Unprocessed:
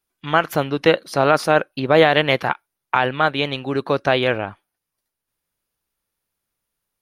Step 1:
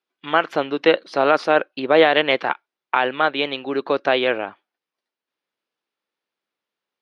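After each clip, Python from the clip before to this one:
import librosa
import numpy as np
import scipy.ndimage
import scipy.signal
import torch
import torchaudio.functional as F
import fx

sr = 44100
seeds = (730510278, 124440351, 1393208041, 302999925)

y = scipy.signal.sosfilt(scipy.signal.cheby1(2, 1.0, [310.0, 3700.0], 'bandpass', fs=sr, output='sos'), x)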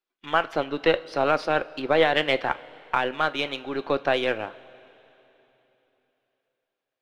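y = np.where(x < 0.0, 10.0 ** (-3.0 / 20.0) * x, x)
y = fx.hpss(y, sr, part='percussive', gain_db=4)
y = fx.rev_double_slope(y, sr, seeds[0], early_s=0.27, late_s=3.5, knee_db=-18, drr_db=12.5)
y = F.gain(torch.from_numpy(y), -6.5).numpy()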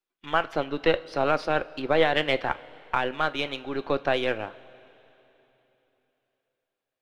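y = fx.low_shelf(x, sr, hz=110.0, db=8.5)
y = F.gain(torch.from_numpy(y), -2.0).numpy()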